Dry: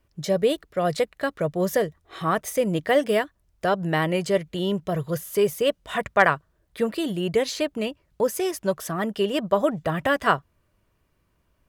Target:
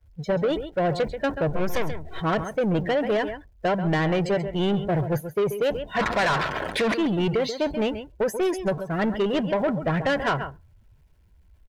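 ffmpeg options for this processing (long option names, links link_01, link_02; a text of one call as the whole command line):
ffmpeg -i in.wav -filter_complex "[0:a]aeval=exprs='val(0)+0.5*0.0531*sgn(val(0))':channel_layout=same,asettb=1/sr,asplit=3[link_01][link_02][link_03];[link_01]atrim=end=1.494[link_04];[link_02]atrim=start=1.49:end=2.2,asetpts=PTS-STARTPTS,afade=type=in:duration=0.004:curve=qsin,afade=type=out:start_time=0.706:duration=0.004:curve=qsin,aeval=exprs='0.335*(cos(1*acos(clip(val(0)/0.335,-1,1)))-cos(1*PI/2))+0.106*(cos(8*acos(clip(val(0)/0.335,-1,1)))-cos(8*PI/2))':channel_layout=same[link_05];[link_03]atrim=start=2.196[link_06];[link_04][link_05]acrossfade=duration=0.004:curve1=hsin:curve2=qsin[link_07];[link_07][link_06]acrossfade=duration=0.004:curve1=qsin:curve2=hsin,asuperstop=centerf=1200:order=8:qfactor=7.2,highshelf=frequency=4300:gain=-5,agate=range=-33dB:threshold=-19dB:ratio=3:detection=peak,acompressor=threshold=-23dB:ratio=6,asettb=1/sr,asplit=3[link_08][link_09][link_10];[link_08]atrim=end=5.994[link_11];[link_09]atrim=start=5.99:end=6.94,asetpts=PTS-STARTPTS,afade=type=in:duration=0.004:curve=qsin,afade=type=out:start_time=0.946:duration=0.004:curve=qsin,asplit=2[link_12][link_13];[link_13]highpass=frequency=720:poles=1,volume=37dB,asoftclip=type=tanh:threshold=-22dB[link_14];[link_12][link_14]amix=inputs=2:normalize=0,lowpass=frequency=6400:poles=1,volume=-6dB[link_15];[link_10]atrim=start=6.936[link_16];[link_11][link_15]acrossfade=duration=0.004:curve1=hsin:curve2=qsin[link_17];[link_17][link_16]acrossfade=duration=0.004:curve1=qsin:curve2=hsin,afftdn=noise_reduction=23:noise_floor=-40,aecho=1:1:134:0.224,asoftclip=type=tanh:threshold=-25dB,volume=7dB" out.wav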